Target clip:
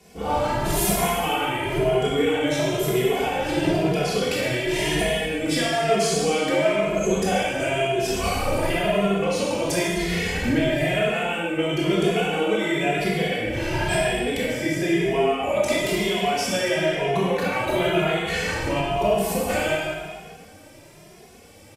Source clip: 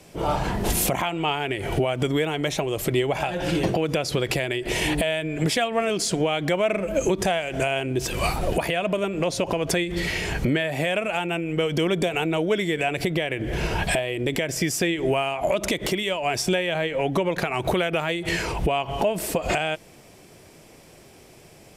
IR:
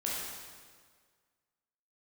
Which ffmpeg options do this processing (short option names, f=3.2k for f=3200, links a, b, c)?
-filter_complex "[0:a]asettb=1/sr,asplit=3[a][b][c];[a]atrim=end=14.384[d];[b]atrim=start=14.38:end=15.62,asetpts=PTS-STARTPTS,afade=t=in:d=0.004:c=qsin,afade=t=out:st=1.236:d=0.004:c=qsin,acrossover=split=2800[e][f];[f]acompressor=threshold=-38dB:ratio=4:attack=1:release=60[g];[e][g]amix=inputs=2:normalize=0[h];[c]atrim=start=15.616[i];[d][h]acrossfade=d=0.004:c1=hsin:c2=qsin[j];[j][i]acrossfade=d=0.004:c1=qsin:c2=hsin[k];[1:a]atrim=start_sample=2205[l];[k][l]afir=irnorm=-1:irlink=0,asplit=2[m][n];[n]adelay=2.4,afreqshift=0.99[o];[m][o]amix=inputs=2:normalize=1"